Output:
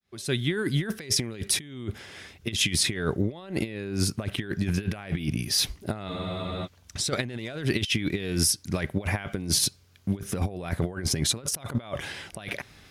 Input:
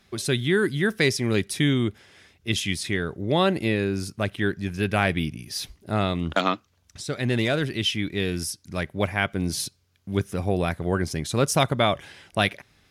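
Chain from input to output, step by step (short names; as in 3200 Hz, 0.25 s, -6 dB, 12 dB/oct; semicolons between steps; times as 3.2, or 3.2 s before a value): opening faded in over 1.26 s; negative-ratio compressor -30 dBFS, ratio -0.5; spectral freeze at 6.11, 0.54 s; gain +2.5 dB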